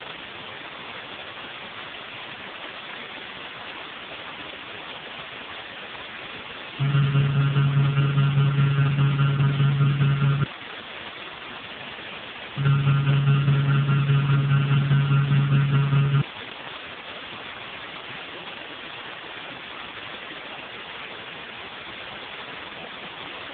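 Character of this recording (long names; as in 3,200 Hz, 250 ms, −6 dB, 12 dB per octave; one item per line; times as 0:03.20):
a buzz of ramps at a fixed pitch in blocks of 32 samples
tremolo saw down 4.9 Hz, depth 65%
a quantiser's noise floor 6 bits, dither triangular
AMR narrowband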